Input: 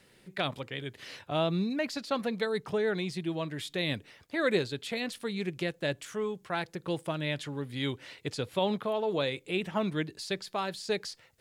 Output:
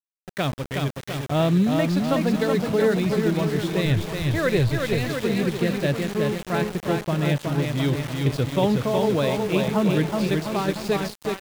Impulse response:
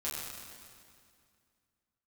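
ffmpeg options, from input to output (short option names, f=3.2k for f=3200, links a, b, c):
-filter_complex "[0:a]aemphasis=mode=reproduction:type=bsi,aecho=1:1:370|703|1003|1272|1515:0.631|0.398|0.251|0.158|0.1,asplit=3[a][b][c];[a]afade=t=out:st=3.85:d=0.02[d];[b]asubboost=boost=10.5:cutoff=72,afade=t=in:st=3.85:d=0.02,afade=t=out:st=5.09:d=0.02[e];[c]afade=t=in:st=5.09:d=0.02[f];[d][e][f]amix=inputs=3:normalize=0,aeval=exprs='val(0)*gte(abs(val(0)),0.0178)':c=same,volume=5dB"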